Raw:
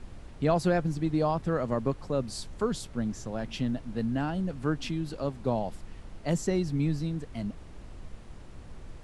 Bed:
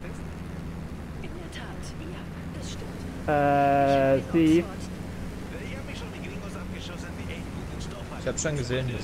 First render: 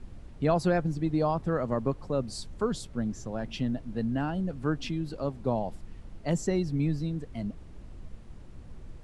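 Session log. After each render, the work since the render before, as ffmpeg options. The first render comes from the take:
-af "afftdn=nr=6:nf=-47"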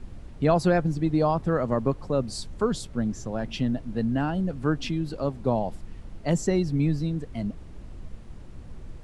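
-af "volume=4dB"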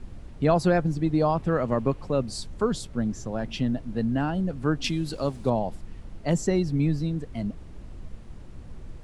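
-filter_complex "[0:a]asettb=1/sr,asplit=3[a][b][c];[a]atrim=end=1.354[d];[b]atrim=start=1.35:end=2.23,asetpts=PTS-STARTPTS,afade=t=in:d=0.004:c=qsin,afade=t=out:st=0.876:d=0.004:c=qsin,equalizer=f=2.6k:t=o:w=0.68:g=5.5[e];[c]atrim=start=2.226[f];[d][e]acrossfade=d=0.004:c1=hsin:c2=qsin[g];[g][f]acrossfade=d=0.004:c1=qsin:c2=hsin,asettb=1/sr,asplit=3[h][i][j];[h]atrim=end=4.844[k];[i]atrim=start=4.84:end=5.5,asetpts=PTS-STARTPTS,afade=t=in:d=0.004:c=qsin,afade=t=out:st=0.656:d=0.004:c=qsin,highshelf=f=3.1k:g=11.5[l];[j]atrim=start=5.496[m];[k][l]acrossfade=d=0.004:c1=hsin:c2=qsin[n];[n][m]acrossfade=d=0.004:c1=qsin:c2=hsin"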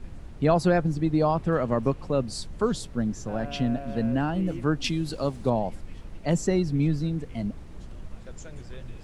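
-filter_complex "[1:a]volume=-17.5dB[a];[0:a][a]amix=inputs=2:normalize=0"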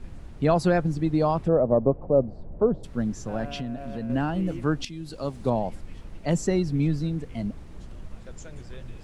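-filter_complex "[0:a]asplit=3[a][b][c];[a]afade=t=out:st=1.47:d=0.02[d];[b]lowpass=f=640:t=q:w=2.2,afade=t=in:st=1.47:d=0.02,afade=t=out:st=2.83:d=0.02[e];[c]afade=t=in:st=2.83:d=0.02[f];[d][e][f]amix=inputs=3:normalize=0,asettb=1/sr,asplit=3[g][h][i];[g]atrim=end=3.484[j];[h]atrim=start=3.48:end=4.1,asetpts=PTS-STARTPTS,afade=t=in:d=0.004:c=qsin,afade=t=out:st=0.616:d=0.004:c=qsin,acompressor=threshold=-29dB:ratio=4:attack=3.2:release=140:knee=1:detection=peak[k];[i]atrim=start=4.096[l];[j][k]acrossfade=d=0.004:c1=hsin:c2=qsin[m];[m][l]acrossfade=d=0.004:c1=qsin:c2=hsin,asplit=2[n][o];[n]atrim=end=4.85,asetpts=PTS-STARTPTS,afade=t=out:st=4.846:d=0.004:c=hsin:silence=0.188365[p];[o]atrim=start=4.85,asetpts=PTS-STARTPTS,afade=t=in:d=0.66:silence=0.188365[q];[p][q]concat=n=2:v=0:a=1"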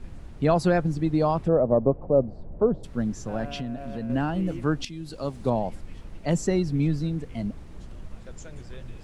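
-af anull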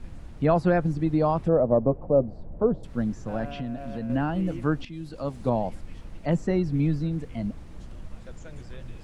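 -filter_complex "[0:a]bandreject=f=400:w=12,acrossover=split=2800[a][b];[b]acompressor=threshold=-54dB:ratio=4:attack=1:release=60[c];[a][c]amix=inputs=2:normalize=0"

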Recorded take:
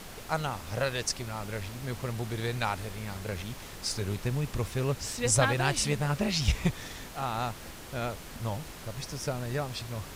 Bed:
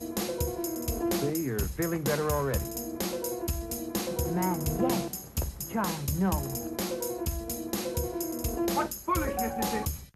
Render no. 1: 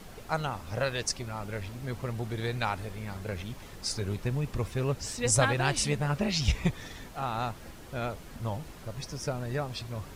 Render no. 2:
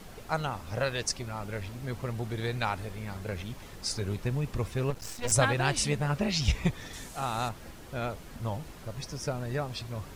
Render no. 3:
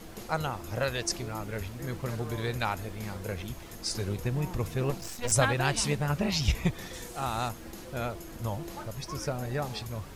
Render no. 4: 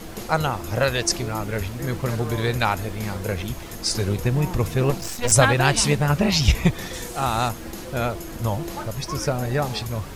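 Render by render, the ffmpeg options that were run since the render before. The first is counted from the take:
-af "afftdn=nr=7:nf=-45"
-filter_complex "[0:a]asettb=1/sr,asplit=3[a][b][c];[a]atrim=end=4.904[d];[b]atrim=start=4.9:end=5.32,asetpts=PTS-STARTPTS,afade=t=in:d=0.004:c=qsin,afade=t=out:st=0.416:d=0.004:c=qsin,aeval=exprs='max(val(0),0)':c=same[e];[c]atrim=start=5.316[f];[d][e]acrossfade=d=0.004:c1=hsin:c2=qsin[g];[g][f]acrossfade=d=0.004:c1=qsin:c2=hsin,asettb=1/sr,asplit=3[h][i][j];[h]atrim=end=6.934[k];[i]atrim=start=6.93:end=7.49,asetpts=PTS-STARTPTS,afade=t=in:d=0.004:c=qsin,afade=t=out:st=0.556:d=0.004:c=qsin,equalizer=f=8.3k:t=o:w=1.4:g=12[l];[j]atrim=start=7.486[m];[k][l]acrossfade=d=0.004:c1=hsin:c2=qsin[n];[n][m]acrossfade=d=0.004:c1=qsin:c2=hsin"
-filter_complex "[1:a]volume=-14dB[a];[0:a][a]amix=inputs=2:normalize=0"
-af "volume=9dB,alimiter=limit=-2dB:level=0:latency=1"

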